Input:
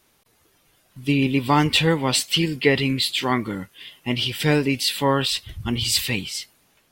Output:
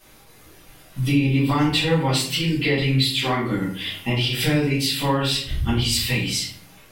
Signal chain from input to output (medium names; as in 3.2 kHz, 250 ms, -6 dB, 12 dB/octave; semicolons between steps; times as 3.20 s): compression 4:1, threshold -33 dBFS, peak gain reduction 17.5 dB; reverberation RT60 0.55 s, pre-delay 4 ms, DRR -9 dB; trim +3 dB